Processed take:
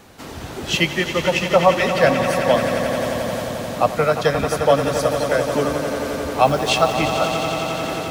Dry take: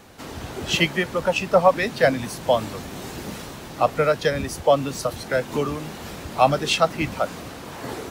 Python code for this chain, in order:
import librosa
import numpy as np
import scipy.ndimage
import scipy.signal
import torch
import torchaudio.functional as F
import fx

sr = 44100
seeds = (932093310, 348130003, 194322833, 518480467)

y = fx.quant_dither(x, sr, seeds[0], bits=8, dither='triangular', at=(6.43, 6.93))
y = fx.echo_swell(y, sr, ms=88, loudest=5, wet_db=-11.0)
y = y * librosa.db_to_amplitude(1.5)